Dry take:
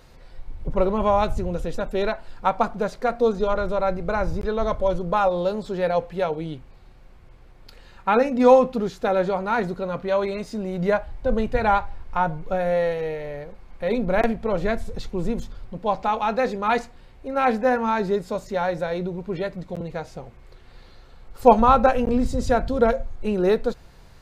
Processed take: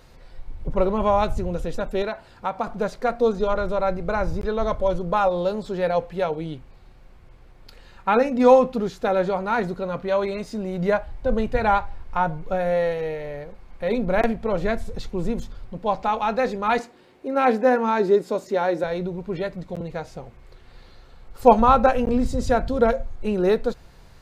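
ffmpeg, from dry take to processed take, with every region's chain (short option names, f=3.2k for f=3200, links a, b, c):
-filter_complex "[0:a]asettb=1/sr,asplit=3[a][b][c];[a]atrim=end=2.024[d];[b]atrim=start=2.02:end=2.67,asetpts=PTS-STARTPTS,afade=t=in:d=0.004:c=qsin,afade=t=out:st=0.646:d=0.004:c=qsin,highpass=51,acompressor=threshold=-29dB:ratio=1.5:attack=3.2:release=140:knee=1:detection=peak[e];[c]atrim=start=2.666[f];[d][e]acrossfade=d=0.004:c1=hsin:c2=qsin[g];[g][f]acrossfade=d=0.004:c1=qsin:c2=hsin,asettb=1/sr,asplit=3[h][i][j];[h]atrim=end=16.794[k];[i]atrim=start=16.79:end=18.84,asetpts=PTS-STARTPTS,afade=t=in:d=0.004:c=qsin,afade=t=out:st=2.046:d=0.004:c=qsin,highpass=200,equalizer=f=340:t=o:w=0.77:g=9[l];[j]atrim=start=18.836[m];[k][l]acrossfade=d=0.004:c1=hsin:c2=qsin[n];[n][m]acrossfade=d=0.004:c1=qsin:c2=hsin"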